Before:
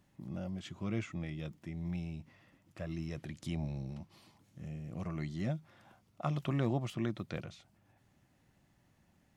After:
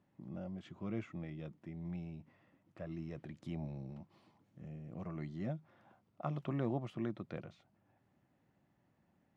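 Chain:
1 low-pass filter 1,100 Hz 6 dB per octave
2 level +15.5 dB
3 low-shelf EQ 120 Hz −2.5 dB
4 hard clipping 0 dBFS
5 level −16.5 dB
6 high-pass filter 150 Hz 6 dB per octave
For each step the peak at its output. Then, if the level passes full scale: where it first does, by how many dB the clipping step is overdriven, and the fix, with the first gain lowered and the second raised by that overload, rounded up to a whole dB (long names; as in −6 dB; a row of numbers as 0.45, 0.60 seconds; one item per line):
−21.0, −5.5, −6.0, −6.0, −22.5, −24.0 dBFS
no step passes full scale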